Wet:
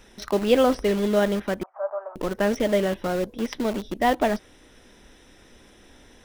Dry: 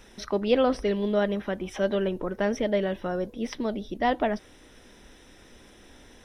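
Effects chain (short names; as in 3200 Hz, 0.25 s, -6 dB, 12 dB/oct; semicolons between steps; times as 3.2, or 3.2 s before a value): in parallel at -6 dB: bit-crush 5-bit; 1.63–2.16 on the sum: elliptic band-pass 620–1300 Hz, stop band 60 dB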